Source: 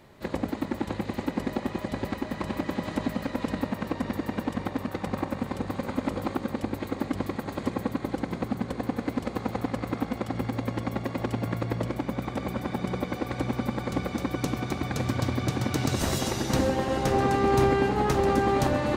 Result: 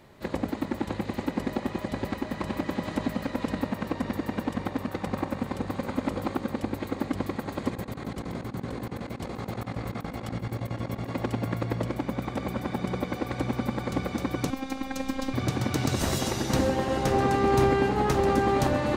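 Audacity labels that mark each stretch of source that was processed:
7.720000	11.130000	negative-ratio compressor -33 dBFS, ratio -0.5
14.500000	15.340000	robotiser 265 Hz

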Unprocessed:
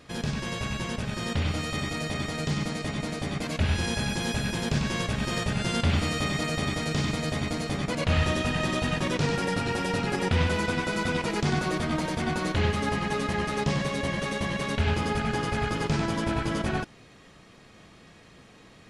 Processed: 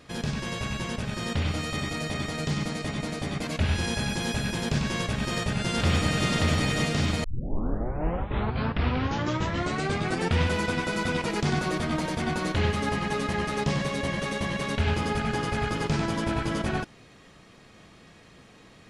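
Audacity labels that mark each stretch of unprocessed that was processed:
5.190000	6.270000	echo throw 0.58 s, feedback 55%, level -1.5 dB
7.240000	7.240000	tape start 3.17 s

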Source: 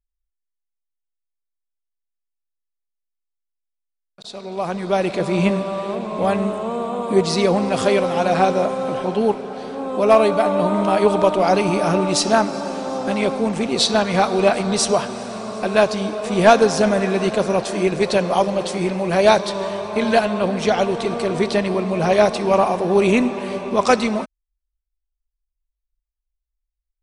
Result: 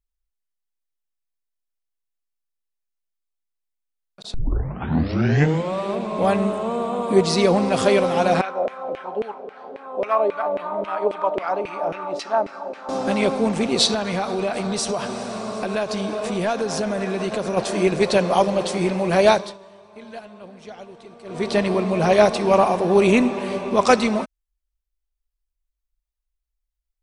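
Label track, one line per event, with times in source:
4.340000	4.340000	tape start 1.44 s
8.410000	12.890000	LFO band-pass saw down 3.7 Hz 430–2400 Hz
13.940000	17.570000	compressor 4:1, threshold -21 dBFS
19.220000	21.600000	dip -21 dB, fades 0.36 s

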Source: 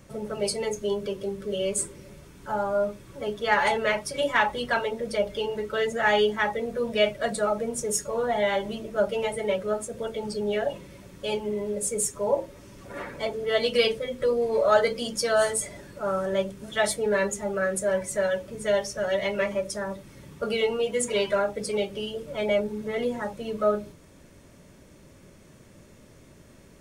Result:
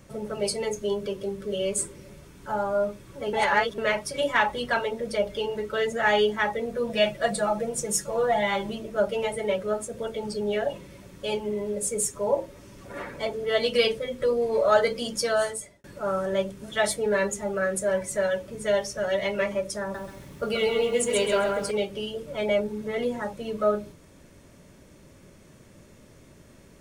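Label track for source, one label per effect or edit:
3.330000	3.780000	reverse
6.890000	8.700000	comb 5.9 ms
15.250000	15.840000	fade out
19.810000	21.710000	lo-fi delay 0.132 s, feedback 35%, word length 9-bit, level -3.5 dB

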